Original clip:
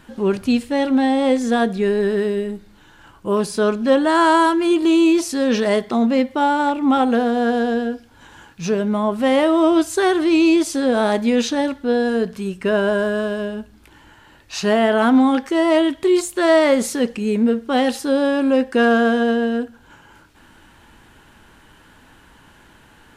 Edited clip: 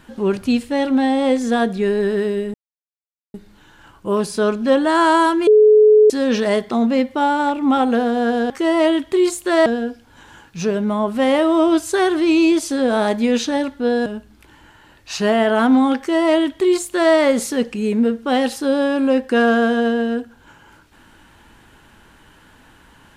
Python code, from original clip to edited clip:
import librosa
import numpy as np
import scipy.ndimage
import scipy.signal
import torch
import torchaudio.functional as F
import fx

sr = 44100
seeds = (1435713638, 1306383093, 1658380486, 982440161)

y = fx.edit(x, sr, fx.insert_silence(at_s=2.54, length_s=0.8),
    fx.bleep(start_s=4.67, length_s=0.63, hz=427.0, db=-6.5),
    fx.cut(start_s=12.1, length_s=1.39),
    fx.duplicate(start_s=15.41, length_s=1.16, to_s=7.7), tone=tone)